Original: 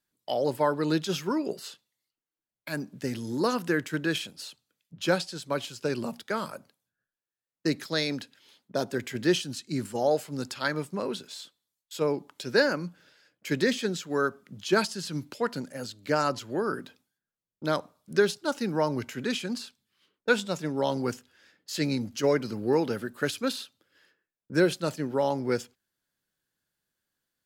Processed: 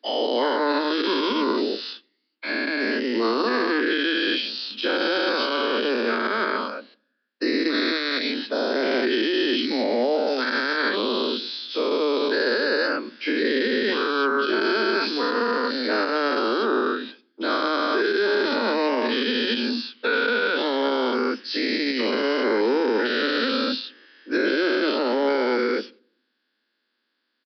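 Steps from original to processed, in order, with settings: spectral dilation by 0.48 s; steep high-pass 220 Hz 96 dB/oct; bell 700 Hz -6.5 dB 0.87 oct; in parallel at 0 dB: compressor, threshold -31 dBFS, peak gain reduction 15.5 dB; on the sum: limiter -13.5 dBFS, peak gain reduction 10.5 dB; on a send at -24 dB: reverb RT60 0.65 s, pre-delay 3 ms; on the sum: downsampling 11025 Hz

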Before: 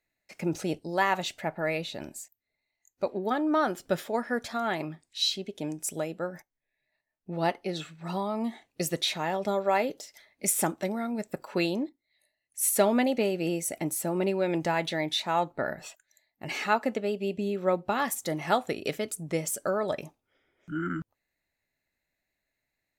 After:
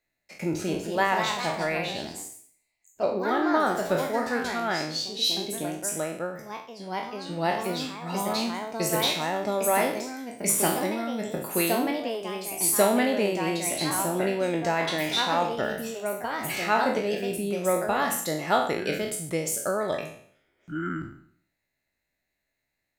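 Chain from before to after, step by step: spectral trails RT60 0.59 s; echoes that change speed 0.303 s, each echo +2 st, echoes 2, each echo -6 dB

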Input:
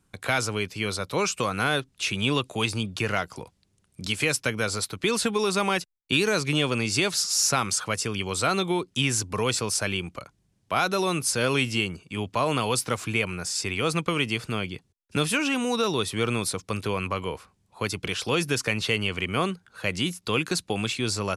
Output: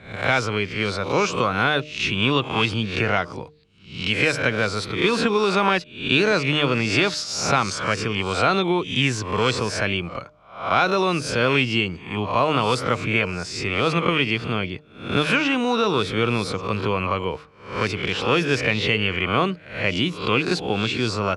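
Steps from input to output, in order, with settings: spectral swells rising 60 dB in 0.49 s; LPF 3600 Hz 12 dB/oct; de-hum 151.4 Hz, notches 4; gain +4 dB

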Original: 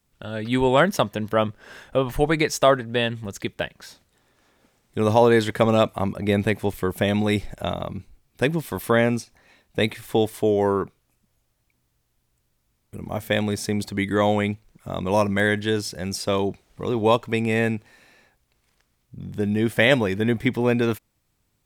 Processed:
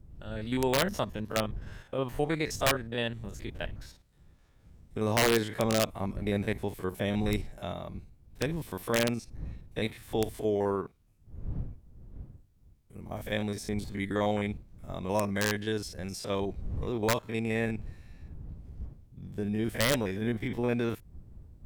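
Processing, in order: stepped spectrum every 50 ms; wind noise 83 Hz -36 dBFS; wrapped overs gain 9 dB; gain -8 dB

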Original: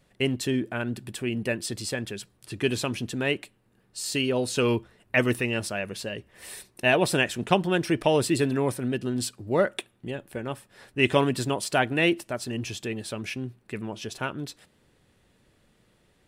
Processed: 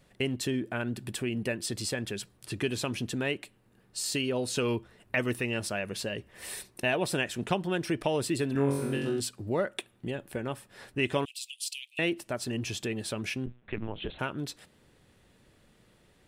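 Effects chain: 8.53–9.2 flutter echo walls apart 3.7 m, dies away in 0.62 s; 13.46–14.19 LPC vocoder at 8 kHz pitch kept; compressor 2:1, threshold -33 dBFS, peak gain reduction 11.5 dB; 11.25–11.99 steep high-pass 2500 Hz 72 dB/oct; gain +1.5 dB

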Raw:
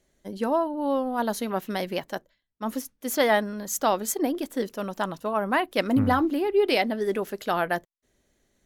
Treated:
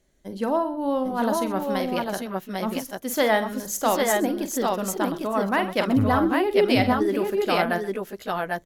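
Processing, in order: low shelf 140 Hz +4.5 dB; on a send: tapped delay 46/127/785/801 ms -10.5/-17.5/-11/-3 dB

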